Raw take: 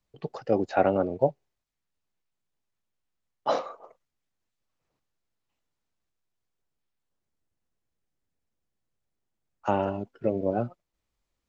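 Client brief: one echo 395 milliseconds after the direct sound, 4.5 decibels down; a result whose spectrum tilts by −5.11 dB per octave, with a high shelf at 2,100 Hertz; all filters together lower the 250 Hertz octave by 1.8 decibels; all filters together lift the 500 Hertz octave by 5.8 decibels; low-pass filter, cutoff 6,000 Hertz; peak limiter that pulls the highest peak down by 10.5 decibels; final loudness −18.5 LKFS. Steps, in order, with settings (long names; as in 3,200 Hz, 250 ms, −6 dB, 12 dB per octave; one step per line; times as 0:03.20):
low-pass filter 6,000 Hz
parametric band 250 Hz −5.5 dB
parametric band 500 Hz +7.5 dB
high-shelf EQ 2,100 Hz +7 dB
brickwall limiter −14 dBFS
single-tap delay 395 ms −4.5 dB
level +9.5 dB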